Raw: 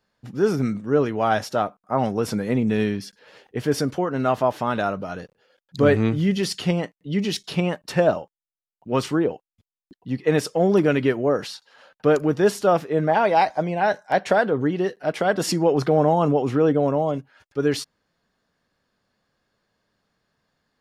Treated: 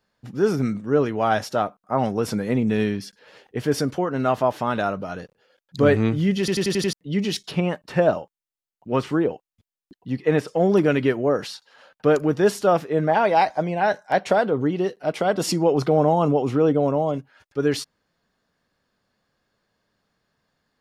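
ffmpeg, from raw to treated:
ffmpeg -i in.wav -filter_complex "[0:a]asettb=1/sr,asplit=3[link_01][link_02][link_03];[link_01]atrim=end=7.514[link_04];[link_02]atrim=start=7.51:end=10.48,asetpts=PTS-STARTPTS,afade=type=in:duration=0.004:curve=qsin,afade=type=out:start_time=2.966:duration=0.004:curve=qsin,acrossover=split=2900[link_05][link_06];[link_06]acompressor=threshold=-44dB:ratio=4:attack=1:release=60[link_07];[link_05][link_07]amix=inputs=2:normalize=0[link_08];[link_03]atrim=start=10.476[link_09];[link_04][link_08]acrossfade=duration=0.004:curve1=hsin:curve2=qsin[link_10];[link_10][link_09]acrossfade=duration=0.004:curve1=qsin:curve2=hsin,asettb=1/sr,asplit=3[link_11][link_12][link_13];[link_11]atrim=end=14.204[link_14];[link_12]atrim=start=14.2:end=17.14,asetpts=PTS-STARTPTS,afade=type=in:duration=0.004:curve=qsin,afade=type=out:start_time=2.936:duration=0.004:curve=qsin,equalizer=frequency=1700:width_type=o:width=0.31:gain=-7[link_15];[link_13]atrim=start=17.136[link_16];[link_14][link_15]acrossfade=duration=0.004:curve1=hsin:curve2=qsin[link_17];[link_17][link_16]acrossfade=duration=0.004:curve1=qsin:curve2=hsin,asplit=7[link_18][link_19][link_20][link_21][link_22][link_23][link_24];[link_18]atrim=end=6.482[link_25];[link_19]atrim=start=6.388:end=6.482[link_26];[link_20]atrim=start=6.388:end=6.482[link_27];[link_21]atrim=start=6.388:end=6.482[link_28];[link_22]atrim=start=6.388:end=6.482[link_29];[link_23]atrim=start=6.388:end=6.482[link_30];[link_24]atrim=start=6.928[link_31];[link_25][link_26]acrossfade=duration=0.004:curve1=hsin:curve2=hsin[link_32];[link_32][link_27]acrossfade=duration=0.004:curve1=hsin:curve2=hsin[link_33];[link_33][link_28]acrossfade=duration=0.004:curve1=hsin:curve2=hsin[link_34];[link_34][link_29]acrossfade=duration=0.004:curve1=hsin:curve2=hsin[link_35];[link_35][link_30]acrossfade=duration=0.004:curve1=hsin:curve2=hsin[link_36];[link_36][link_31]acrossfade=duration=0.004:curve1=hsin:curve2=hsin" out.wav

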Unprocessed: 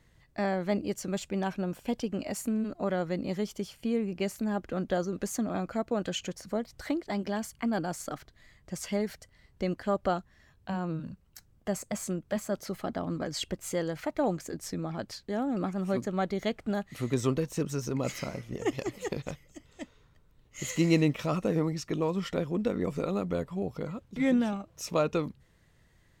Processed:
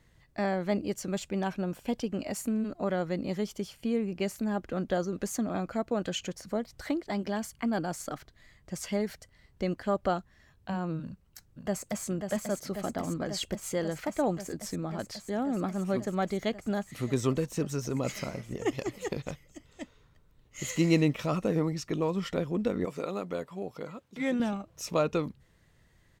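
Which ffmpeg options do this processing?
ffmpeg -i in.wav -filter_complex "[0:a]asplit=2[link_01][link_02];[link_02]afade=type=in:start_time=11.02:duration=0.01,afade=type=out:start_time=12.05:duration=0.01,aecho=0:1:540|1080|1620|2160|2700|3240|3780|4320|4860|5400|5940|6480:0.501187|0.426009|0.362108|0.307792|0.261623|0.222379|0.189023|0.160669|0.136569|0.116083|0.0986709|0.0838703[link_03];[link_01][link_03]amix=inputs=2:normalize=0,asettb=1/sr,asplit=3[link_04][link_05][link_06];[link_04]atrim=end=22.854[link_07];[link_05]atrim=start=22.85:end=24.4,asetpts=PTS-STARTPTS,afade=type=in:duration=0.004:curve=qsin,afade=type=out:start_time=1.546:duration=0.004:curve=qsin,highpass=frequency=400:poles=1[link_08];[link_06]atrim=start=24.396[link_09];[link_07][link_08]acrossfade=duration=0.004:curve1=hsin:curve2=qsin[link_10];[link_10][link_09]acrossfade=duration=0.004:curve1=qsin:curve2=hsin" out.wav

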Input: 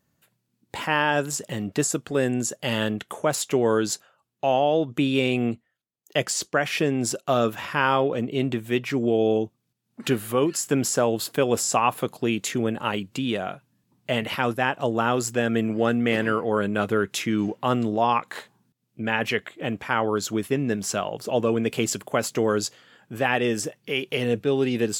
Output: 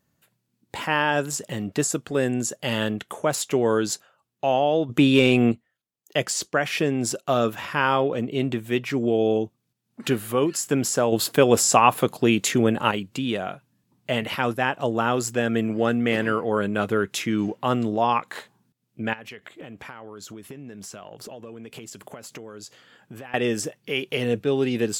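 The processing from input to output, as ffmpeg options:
ffmpeg -i in.wav -filter_complex "[0:a]asettb=1/sr,asplit=3[link_01][link_02][link_03];[link_01]atrim=end=4.894[link_04];[link_02]atrim=start=4.89:end=5.52,asetpts=PTS-STARTPTS,afade=type=in:duration=0.004:curve=qsin,afade=type=out:start_time=0.626:duration=0.004:curve=qsin,acontrast=45[link_05];[link_03]atrim=start=5.516[link_06];[link_04][link_05]acrossfade=duration=0.004:curve1=hsin:curve2=qsin[link_07];[link_07][link_06]acrossfade=duration=0.004:curve1=qsin:curve2=hsin,asettb=1/sr,asplit=3[link_08][link_09][link_10];[link_08]atrim=end=19.134[link_11];[link_09]atrim=start=19.13:end=23.34,asetpts=PTS-STARTPTS,afade=type=in:duration=0.004:curve=qsin,afade=type=out:start_time=4.206:duration=0.004:curve=qsin,acompressor=threshold=-35dB:ratio=16:attack=3.2:release=140:knee=1:detection=peak[link_12];[link_10]atrim=start=23.336[link_13];[link_11][link_12]acrossfade=duration=0.004:curve1=hsin:curve2=qsin[link_14];[link_14][link_13]acrossfade=duration=0.004:curve1=qsin:curve2=hsin,asplit=3[link_15][link_16][link_17];[link_15]atrim=end=11.122[link_18];[link_16]atrim=start=11.118:end=12.912,asetpts=PTS-STARTPTS,volume=5dB[link_19];[link_17]atrim=start=12.908[link_20];[link_18][link_19]acrossfade=duration=0.004:curve1=hsin:curve2=hsin[link_21];[link_21][link_20]acrossfade=duration=0.004:curve1=hsin:curve2=hsin" out.wav

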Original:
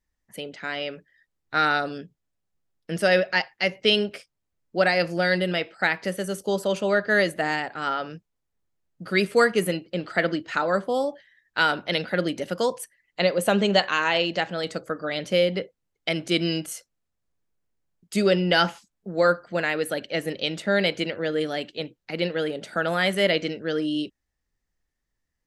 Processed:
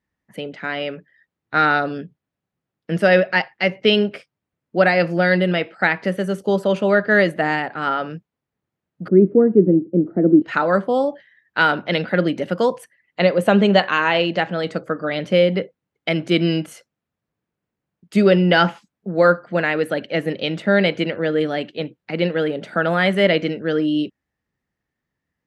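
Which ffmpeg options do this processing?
ffmpeg -i in.wav -filter_complex "[0:a]asettb=1/sr,asplit=3[link_01][link_02][link_03];[link_01]atrim=end=9.084[link_04];[link_02]atrim=start=9.08:end=10.42,asetpts=PTS-STARTPTS,afade=type=in:duration=0.004:curve=qsin,afade=type=out:start_time=1.336:duration=0.004:curve=qsin,lowpass=frequency=330:width_type=q:width=3.1[link_05];[link_03]atrim=start=10.416[link_06];[link_04][link_05]acrossfade=duration=0.004:curve1=hsin:curve2=qsin[link_07];[link_07][link_06]acrossfade=duration=0.004:curve1=qsin:curve2=hsin,highpass=130,bass=frequency=250:gain=5,treble=frequency=4000:gain=-14,volume=5.5dB" out.wav

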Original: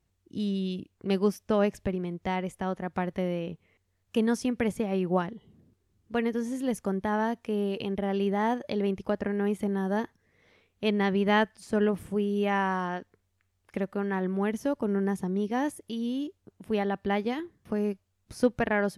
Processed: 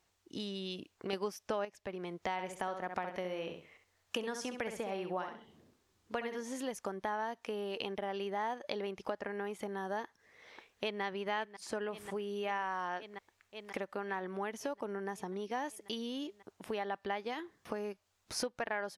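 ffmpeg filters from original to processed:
ffmpeg -i in.wav -filter_complex "[0:a]asettb=1/sr,asplit=3[link_01][link_02][link_03];[link_01]atrim=end=2.324[link_04];[link_02]atrim=start=2.32:end=6.41,asetpts=PTS-STARTPTS,afade=type=in:duration=0.004:curve=qsin,afade=type=out:start_time=4.086:duration=0.004:curve=qsin,aecho=1:1:66|132|198:0.398|0.0876|0.0193,atrim=end_sample=180369[link_05];[link_03]atrim=start=6.406[link_06];[link_04][link_05]acrossfade=duration=0.004:curve1=hsin:curve2=qsin[link_07];[link_07][link_06]acrossfade=duration=0.004:curve1=qsin:curve2=hsin,asplit=2[link_08][link_09];[link_09]afade=type=in:start_time=10.04:duration=0.01,afade=type=out:start_time=11.02:duration=0.01,aecho=0:1:540|1080|1620|2160|2700|3240|3780|4320|4860|5400|5940:0.223872|0.167904|0.125928|0.094446|0.0708345|0.0531259|0.0398444|0.0298833|0.0224125|0.0168094|0.012607[link_10];[link_08][link_10]amix=inputs=2:normalize=0,asplit=3[link_11][link_12][link_13];[link_11]atrim=end=1.132[link_14];[link_12]atrim=start=1.128:end=1.652,asetpts=PTS-STARTPTS,volume=8.5dB[link_15];[link_13]atrim=start=1.648[link_16];[link_14][link_15]acrossfade=duration=0.004:curve1=hsin:curve2=hsin[link_17];[link_17][link_16]acrossfade=duration=0.004:curve1=hsin:curve2=hsin,firequalizer=gain_entry='entry(170,0);entry(830,9);entry(10000,-6)':delay=0.05:min_phase=1,acompressor=threshold=-33dB:ratio=6,bass=frequency=250:gain=-9,treble=frequency=4000:gain=10,volume=-1dB" out.wav

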